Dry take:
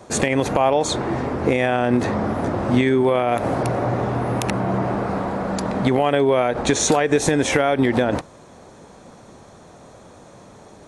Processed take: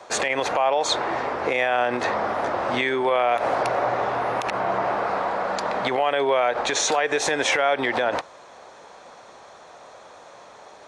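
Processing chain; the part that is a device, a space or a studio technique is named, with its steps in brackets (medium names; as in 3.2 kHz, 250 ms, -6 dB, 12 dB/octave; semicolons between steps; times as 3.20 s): DJ mixer with the lows and highs turned down (three-band isolator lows -21 dB, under 510 Hz, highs -15 dB, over 6.1 kHz; peak limiter -15.5 dBFS, peak gain reduction 8.5 dB); trim +4 dB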